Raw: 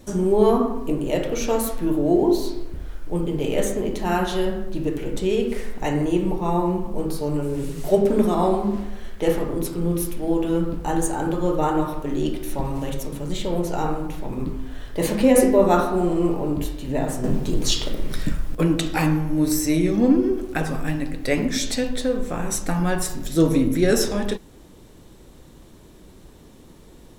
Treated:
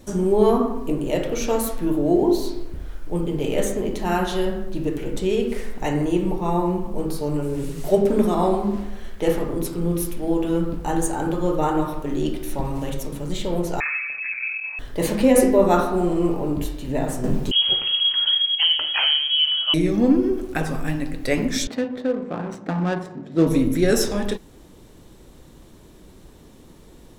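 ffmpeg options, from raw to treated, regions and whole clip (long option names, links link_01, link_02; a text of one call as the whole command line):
ffmpeg -i in.wav -filter_complex "[0:a]asettb=1/sr,asplit=3[link_01][link_02][link_03];[link_01]atrim=end=13.804[link_04];[link_02]atrim=start=13.8:end=14.79,asetpts=PTS-STARTPTS,afade=type=in:duration=0.004:curve=qsin,afade=type=out:start_time=0.986:duration=0.004:curve=qsin,aeval=exprs='(tanh(7.94*val(0)+0.45)-tanh(0.45))/7.94':channel_layout=same,lowpass=frequency=2200:width_type=q:width=0.5098,lowpass=frequency=2200:width_type=q:width=0.6013,lowpass=frequency=2200:width_type=q:width=0.9,lowpass=frequency=2200:width_type=q:width=2.563,afreqshift=-2600[link_05];[link_03]atrim=start=14.786[link_06];[link_04][link_05]acrossfade=duration=0.004:curve1=hsin:curve2=qsin[link_07];[link_07][link_06]acrossfade=duration=0.004:curve1=qsin:curve2=hsin,asettb=1/sr,asplit=3[link_08][link_09][link_10];[link_08]atrim=end=17.514[link_11];[link_09]atrim=start=17.51:end=19.74,asetpts=PTS-STARTPTS,afade=type=in:duration=0.004:curve=qsin,afade=type=out:start_time=2.226:duration=0.004:curve=qsin,bandreject=frequency=1200:width=29,lowpass=frequency=2800:width_type=q:width=0.5098,lowpass=frequency=2800:width_type=q:width=0.6013,lowpass=frequency=2800:width_type=q:width=0.9,lowpass=frequency=2800:width_type=q:width=2.563,afreqshift=-3300[link_12];[link_10]atrim=start=19.736[link_13];[link_11][link_12]acrossfade=duration=0.004:curve1=hsin:curve2=qsin[link_14];[link_14][link_13]acrossfade=duration=0.004:curve1=qsin:curve2=hsin,asettb=1/sr,asplit=3[link_15][link_16][link_17];[link_15]atrim=end=21.674[link_18];[link_16]atrim=start=21.67:end=23.47,asetpts=PTS-STARTPTS,afade=type=in:duration=0.004:curve=qsin,afade=type=out:start_time=1.796:duration=0.004:curve=qsin,highpass=frequency=140:width=0.5412,highpass=frequency=140:width=1.3066,acrusher=bits=5:mode=log:mix=0:aa=0.000001,adynamicsmooth=sensitivity=1.5:basefreq=1000[link_19];[link_17]atrim=start=23.466[link_20];[link_18][link_19]acrossfade=duration=0.004:curve1=hsin:curve2=qsin[link_21];[link_21][link_20]acrossfade=duration=0.004:curve1=qsin:curve2=hsin" out.wav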